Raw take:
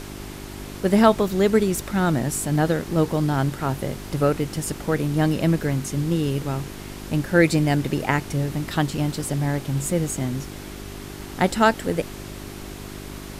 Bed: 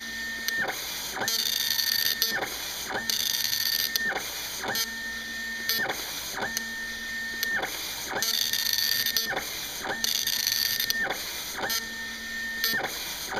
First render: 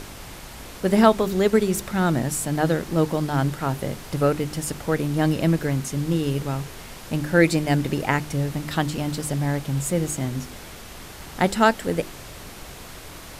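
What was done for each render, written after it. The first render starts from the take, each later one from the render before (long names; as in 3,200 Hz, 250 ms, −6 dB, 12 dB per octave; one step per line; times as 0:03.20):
hum removal 50 Hz, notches 8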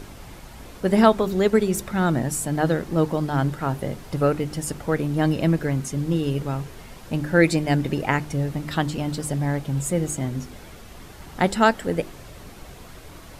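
broadband denoise 7 dB, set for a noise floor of −40 dBFS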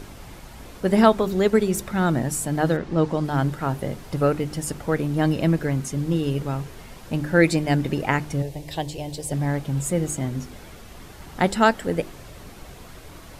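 0:02.76–0:03.23: low-pass filter 3,800 Hz → 9,600 Hz
0:08.42–0:09.32: phaser with its sweep stopped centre 550 Hz, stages 4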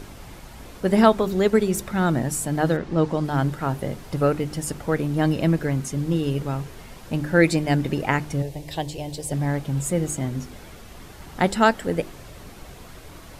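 no processing that can be heard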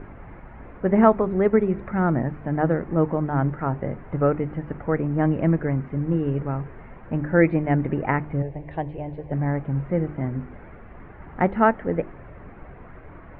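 Butterworth low-pass 2,100 Hz 36 dB per octave
dynamic equaliser 1,600 Hz, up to −4 dB, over −41 dBFS, Q 4.8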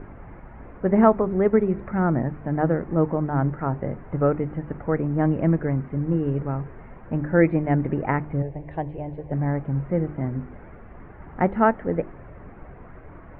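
low-pass filter 2,100 Hz 6 dB per octave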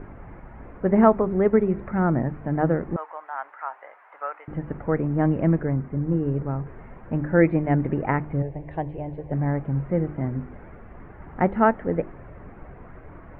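0:02.96–0:04.48: high-pass filter 840 Hz 24 dB per octave
0:05.63–0:06.67: high-frequency loss of the air 370 metres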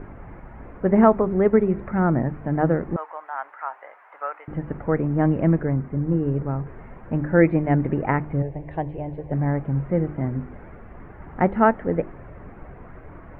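level +1.5 dB
brickwall limiter −3 dBFS, peak gain reduction 1 dB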